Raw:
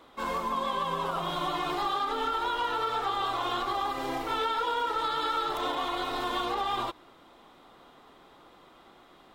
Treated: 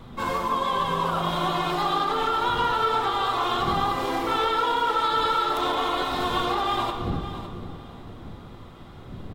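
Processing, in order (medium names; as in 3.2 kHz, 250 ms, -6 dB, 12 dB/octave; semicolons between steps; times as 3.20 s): wind noise 180 Hz -45 dBFS; feedback delay 558 ms, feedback 24%, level -12.5 dB; reverberation RT60 2.1 s, pre-delay 8 ms, DRR 6 dB; trim +4.5 dB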